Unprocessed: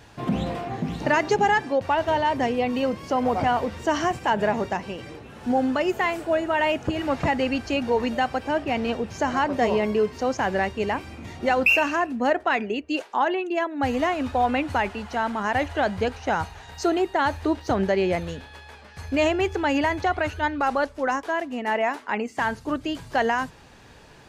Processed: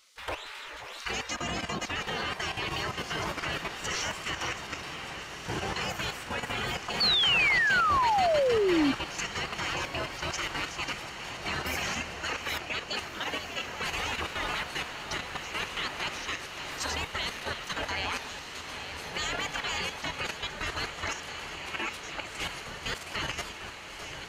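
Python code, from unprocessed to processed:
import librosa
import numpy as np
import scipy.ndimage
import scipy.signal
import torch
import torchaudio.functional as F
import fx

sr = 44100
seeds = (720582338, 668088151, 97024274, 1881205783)

p1 = fx.reverse_delay(x, sr, ms=527, wet_db=-7.0)
p2 = fx.spec_gate(p1, sr, threshold_db=-20, keep='weak')
p3 = fx.level_steps(p2, sr, step_db=10)
p4 = p3 + fx.echo_diffused(p3, sr, ms=1686, feedback_pct=66, wet_db=-9.5, dry=0)
p5 = fx.spec_paint(p4, sr, seeds[0], shape='fall', start_s=7.0, length_s=1.92, low_hz=260.0, high_hz=4600.0, level_db=-32.0)
p6 = fx.band_squash(p5, sr, depth_pct=40, at=(16.13, 16.8))
y = F.gain(torch.from_numpy(p6), 7.5).numpy()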